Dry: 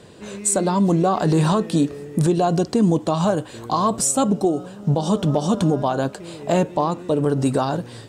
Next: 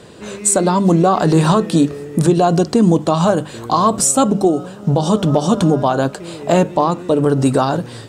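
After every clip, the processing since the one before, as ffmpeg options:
-af "equalizer=f=1300:t=o:w=0.28:g=3,bandreject=f=50:t=h:w=6,bandreject=f=100:t=h:w=6,bandreject=f=150:t=h:w=6,bandreject=f=200:t=h:w=6,volume=1.88"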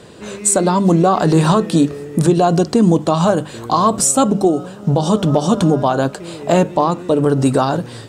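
-af anull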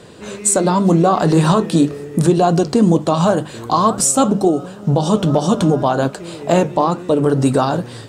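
-af "flanger=delay=5.4:depth=6.6:regen=-77:speed=2:shape=triangular,volume=1.58"

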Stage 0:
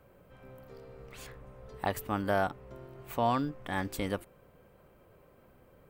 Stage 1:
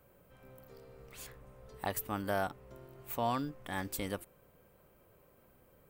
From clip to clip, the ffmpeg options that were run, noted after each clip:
-af "highshelf=f=6000:g=11.5,volume=0.562"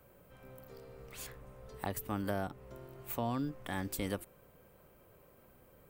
-filter_complex "[0:a]acrossover=split=420[s0][s1];[s1]acompressor=threshold=0.0112:ratio=10[s2];[s0][s2]amix=inputs=2:normalize=0,volume=1.33"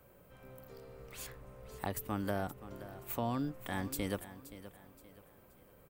-af "aecho=1:1:524|1048|1572:0.188|0.0678|0.0244"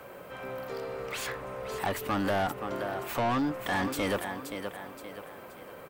-filter_complex "[0:a]asplit=2[s0][s1];[s1]highpass=f=720:p=1,volume=25.1,asoftclip=type=tanh:threshold=0.106[s2];[s0][s2]amix=inputs=2:normalize=0,lowpass=f=2400:p=1,volume=0.501"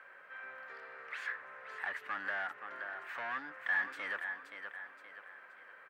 -af "bandpass=f=1700:t=q:w=4.6:csg=0,volume=1.41"

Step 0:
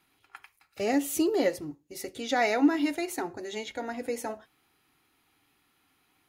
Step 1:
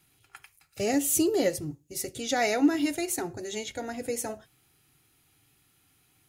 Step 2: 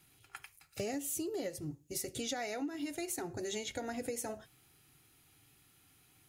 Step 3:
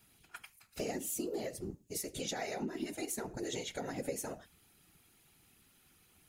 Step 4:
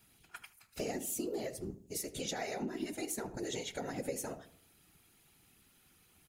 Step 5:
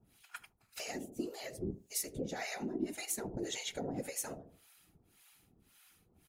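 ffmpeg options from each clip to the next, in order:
-af "equalizer=f=125:t=o:w=1:g=7,equalizer=f=250:t=o:w=1:g=-7,equalizer=f=500:t=o:w=1:g=-3,equalizer=f=1000:t=o:w=1:g=-10,equalizer=f=2000:t=o:w=1:g=-5,equalizer=f=4000:t=o:w=1:g=-4,equalizer=f=8000:t=o:w=1:g=4,volume=2.11"
-af "acompressor=threshold=0.0178:ratio=12"
-af "afftfilt=real='hypot(re,im)*cos(2*PI*random(0))':imag='hypot(re,im)*sin(2*PI*random(1))':win_size=512:overlap=0.75,volume=1.88"
-filter_complex "[0:a]asplit=2[s0][s1];[s1]adelay=77,lowpass=f=1200:p=1,volume=0.2,asplit=2[s2][s3];[s3]adelay=77,lowpass=f=1200:p=1,volume=0.48,asplit=2[s4][s5];[s5]adelay=77,lowpass=f=1200:p=1,volume=0.48,asplit=2[s6][s7];[s7]adelay=77,lowpass=f=1200:p=1,volume=0.48,asplit=2[s8][s9];[s9]adelay=77,lowpass=f=1200:p=1,volume=0.48[s10];[s0][s2][s4][s6][s8][s10]amix=inputs=6:normalize=0"
-filter_complex "[0:a]acrossover=split=770[s0][s1];[s0]aeval=exprs='val(0)*(1-1/2+1/2*cos(2*PI*1.8*n/s))':c=same[s2];[s1]aeval=exprs='val(0)*(1-1/2-1/2*cos(2*PI*1.8*n/s))':c=same[s3];[s2][s3]amix=inputs=2:normalize=0,volume=1.58"

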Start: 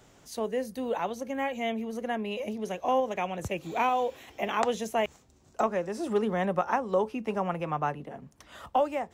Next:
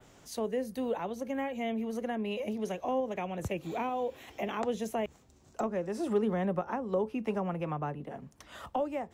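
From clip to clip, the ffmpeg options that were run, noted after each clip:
-filter_complex "[0:a]adynamicequalizer=threshold=0.002:dfrequency=6100:dqfactor=1:tfrequency=6100:tqfactor=1:attack=5:release=100:ratio=0.375:range=2:mode=cutabove:tftype=bell,acrossover=split=470[s0][s1];[s1]acompressor=threshold=0.0126:ratio=3[s2];[s0][s2]amix=inputs=2:normalize=0"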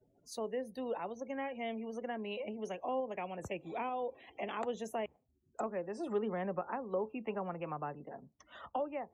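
-af "afftdn=nr=35:nf=-51,lowshelf=f=220:g=-11,volume=0.708"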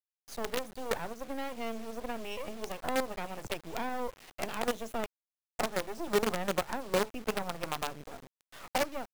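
-af "agate=range=0.398:threshold=0.00112:ratio=16:detection=peak,acrusher=bits=6:dc=4:mix=0:aa=0.000001,volume=1.88"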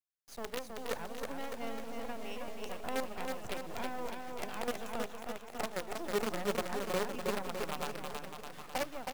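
-af "aecho=1:1:320|608|867.2|1100|1310:0.631|0.398|0.251|0.158|0.1,volume=0.531"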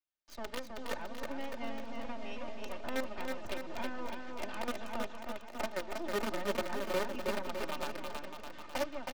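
-filter_complex "[0:a]aecho=1:1:3.3:0.59,acrossover=split=150|530|6200[s0][s1][s2][s3];[s3]acrusher=bits=5:dc=4:mix=0:aa=0.000001[s4];[s0][s1][s2][s4]amix=inputs=4:normalize=0,volume=0.891"

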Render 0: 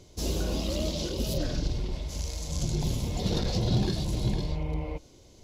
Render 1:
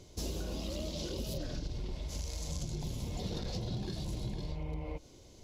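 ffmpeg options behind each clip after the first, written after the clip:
-af "acompressor=threshold=0.0224:ratio=6,volume=0.841"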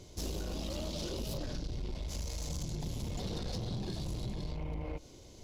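-af "aeval=exprs='(tanh(63.1*val(0)+0.35)-tanh(0.35))/63.1':c=same,volume=1.5"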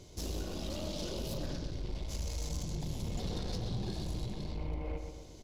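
-filter_complex "[0:a]asplit=2[s0][s1];[s1]adelay=125,lowpass=f=3900:p=1,volume=0.501,asplit=2[s2][s3];[s3]adelay=125,lowpass=f=3900:p=1,volume=0.53,asplit=2[s4][s5];[s5]adelay=125,lowpass=f=3900:p=1,volume=0.53,asplit=2[s6][s7];[s7]adelay=125,lowpass=f=3900:p=1,volume=0.53,asplit=2[s8][s9];[s9]adelay=125,lowpass=f=3900:p=1,volume=0.53,asplit=2[s10][s11];[s11]adelay=125,lowpass=f=3900:p=1,volume=0.53,asplit=2[s12][s13];[s13]adelay=125,lowpass=f=3900:p=1,volume=0.53[s14];[s0][s2][s4][s6][s8][s10][s12][s14]amix=inputs=8:normalize=0,volume=0.891"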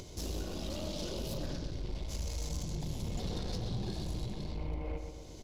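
-af "acompressor=mode=upward:threshold=0.00891:ratio=2.5"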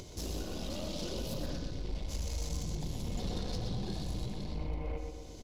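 -af "aecho=1:1:121:0.355"

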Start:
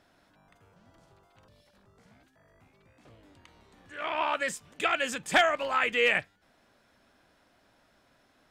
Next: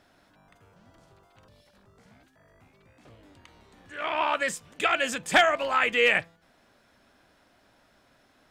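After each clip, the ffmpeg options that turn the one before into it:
-af "bandreject=f=166.9:t=h:w=4,bandreject=f=333.8:t=h:w=4,bandreject=f=500.7:t=h:w=4,bandreject=f=667.6:t=h:w=4,bandreject=f=834.5:t=h:w=4,bandreject=f=1001.4:t=h:w=4,bandreject=f=1168.3:t=h:w=4,volume=1.41"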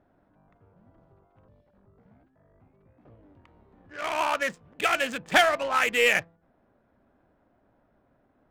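-af "adynamicsmooth=sensitivity=6:basefreq=930"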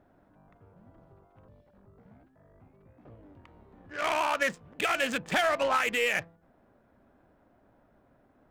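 -af "alimiter=limit=0.1:level=0:latency=1:release=77,volume=1.33"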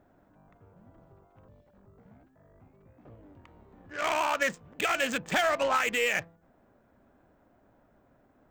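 -af "aexciter=amount=1:drive=5.6:freq=6300"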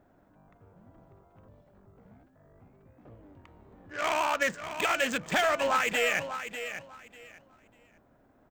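-af "aecho=1:1:595|1190|1785:0.316|0.0664|0.0139"

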